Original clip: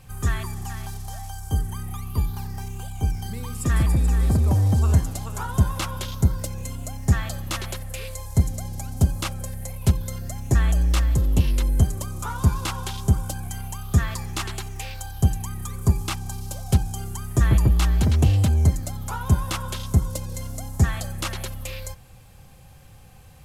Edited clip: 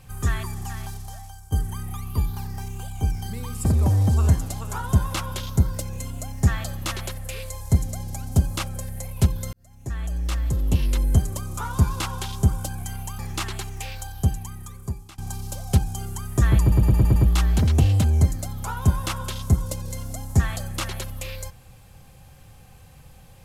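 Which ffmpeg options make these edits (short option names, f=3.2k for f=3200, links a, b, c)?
-filter_complex "[0:a]asplit=11[a][b][c][d][e][f][g][h][i][j][k];[a]atrim=end=1.52,asetpts=PTS-STARTPTS,afade=t=out:st=0.84:d=0.68:silence=0.251189[l];[b]atrim=start=1.52:end=3.652,asetpts=PTS-STARTPTS,afade=t=in:d=0.004:c=hsin:silence=0.251189[m];[c]atrim=start=4.298:end=10.18,asetpts=PTS-STARTPTS,afade=t=out:st=5.878:d=0.004:c=hsin[n];[d]atrim=start=10.18:end=13.842,asetpts=PTS-STARTPTS,afade=t=in:d=1.46[o];[e]atrim=start=14.178:end=16.17,asetpts=PTS-STARTPTS,afade=t=out:st=0.782:d=1.21:silence=0.0749894[p];[f]atrim=start=16.17:end=17.712,asetpts=PTS-STARTPTS,afade=t=in:d=0.004:c=hsin:silence=0.0749894[q];[g]atrim=start=17.598:end=17.712[r];[h]atrim=start=17.598:end=17.712[s];[i]atrim=start=17.598:end=17.712[t];[j]atrim=start=17.598:end=17.712[u];[k]atrim=start=17.598[v];[l][m]concat=n=2:v=0:a=1[w];[n][o]concat=n=2:v=0:a=1[x];[w][x]acrossfade=d=0.004:c1=hsin:c2=hsin[y];[p][q]concat=n=2:v=0:a=1[z];[y][z]acrossfade=d=0.004:c1=hsin:c2=hsin[aa];[aa][r]acrossfade=d=0.004:c1=hsin:c2=hsin[ab];[ab][s]acrossfade=d=0.004:c1=hsin:c2=hsin[ac];[ac][t]acrossfade=d=0.004:c1=hsin:c2=hsin[ad];[ad][u]acrossfade=d=0.004:c1=hsin:c2=hsin[ae];[ae][v]acrossfade=d=0.004:c1=hsin:c2=hsin"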